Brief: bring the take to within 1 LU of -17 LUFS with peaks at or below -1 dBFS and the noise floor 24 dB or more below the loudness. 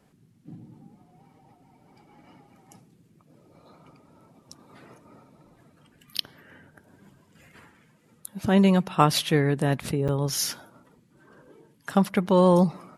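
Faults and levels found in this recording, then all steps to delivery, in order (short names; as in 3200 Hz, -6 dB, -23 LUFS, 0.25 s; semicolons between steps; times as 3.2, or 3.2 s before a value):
dropouts 1; longest dropout 7.4 ms; loudness -23.0 LUFS; peak -4.0 dBFS; loudness target -17.0 LUFS
-> interpolate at 10.08, 7.4 ms; gain +6 dB; limiter -1 dBFS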